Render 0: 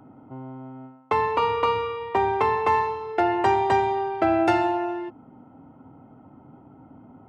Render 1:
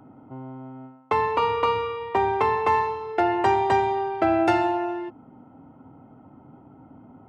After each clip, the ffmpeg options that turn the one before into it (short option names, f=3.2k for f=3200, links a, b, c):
-af anull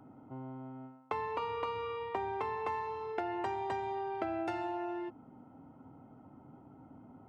-af "acompressor=threshold=-27dB:ratio=6,volume=-6.5dB"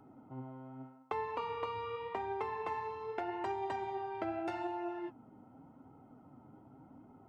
-af "flanger=delay=2.3:depth=7.4:regen=58:speed=0.84:shape=sinusoidal,volume=2dB"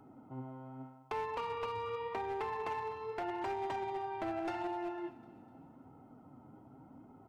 -af "asoftclip=type=hard:threshold=-33.5dB,aecho=1:1:251|502|753|1004:0.133|0.0653|0.032|0.0157,volume=1dB"